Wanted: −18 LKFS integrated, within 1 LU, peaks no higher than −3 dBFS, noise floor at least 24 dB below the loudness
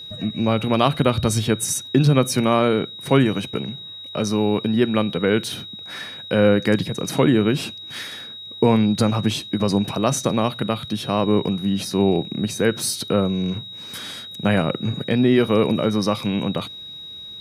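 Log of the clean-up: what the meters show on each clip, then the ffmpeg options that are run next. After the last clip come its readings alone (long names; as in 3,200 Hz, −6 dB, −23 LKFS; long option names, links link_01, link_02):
interfering tone 3,800 Hz; level of the tone −34 dBFS; integrated loudness −20.5 LKFS; sample peak −3.0 dBFS; target loudness −18.0 LKFS
→ -af "bandreject=frequency=3800:width=30"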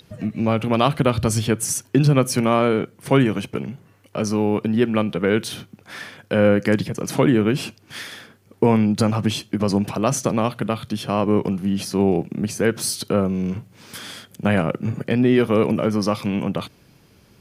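interfering tone none found; integrated loudness −20.5 LKFS; sample peak −3.0 dBFS; target loudness −18.0 LKFS
→ -af "volume=2.5dB,alimiter=limit=-3dB:level=0:latency=1"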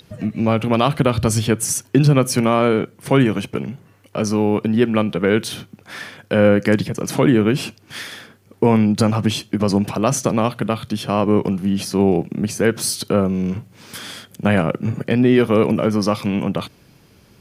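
integrated loudness −18.5 LKFS; sample peak −3.0 dBFS; background noise floor −52 dBFS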